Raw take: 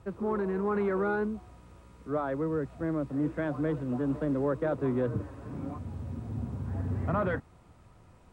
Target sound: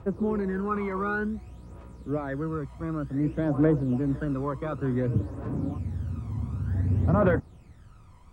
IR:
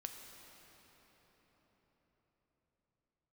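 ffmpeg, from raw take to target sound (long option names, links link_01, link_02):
-af "aphaser=in_gain=1:out_gain=1:delay=1:decay=0.65:speed=0.55:type=triangular"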